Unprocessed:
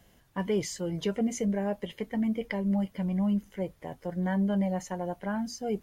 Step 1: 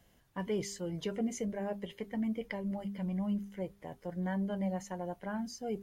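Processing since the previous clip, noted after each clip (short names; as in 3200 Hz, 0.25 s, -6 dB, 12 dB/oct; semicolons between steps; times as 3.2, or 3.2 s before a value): de-hum 200 Hz, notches 2; gain -5.5 dB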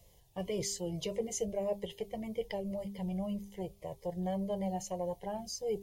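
fixed phaser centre 610 Hz, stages 4; cascading phaser falling 1.8 Hz; gain +7 dB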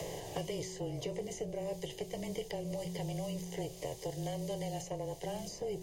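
per-bin compression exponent 0.6; frequency shift -24 Hz; three-band squash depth 100%; gain -6 dB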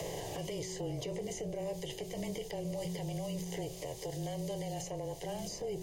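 limiter -34 dBFS, peak gain reduction 9.5 dB; gain +3.5 dB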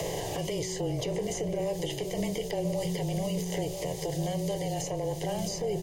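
outdoor echo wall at 170 m, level -8 dB; gain +7 dB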